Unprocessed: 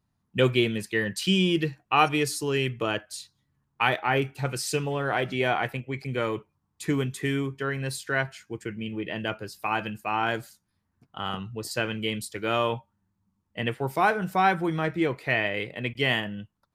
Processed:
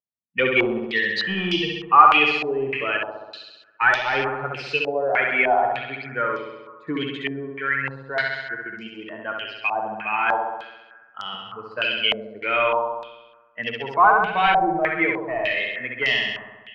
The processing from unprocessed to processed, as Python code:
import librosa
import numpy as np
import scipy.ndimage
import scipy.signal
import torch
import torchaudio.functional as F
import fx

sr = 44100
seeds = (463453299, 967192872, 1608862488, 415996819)

y = fx.bin_expand(x, sr, power=1.5)
y = scipy.signal.sosfilt(scipy.signal.butter(2, 160.0, 'highpass', fs=sr, output='sos'), y)
y = fx.tilt_eq(y, sr, slope=3.0)
y = 10.0 ** (-19.0 / 20.0) * np.tanh(y / 10.0 ** (-19.0 / 20.0))
y = fx.air_absorb(y, sr, metres=240.0)
y = fx.room_flutter(y, sr, wall_m=11.4, rt60_s=1.2)
y = fx.filter_held_lowpass(y, sr, hz=3.3, low_hz=650.0, high_hz=5300.0)
y = F.gain(torch.from_numpy(y), 6.0).numpy()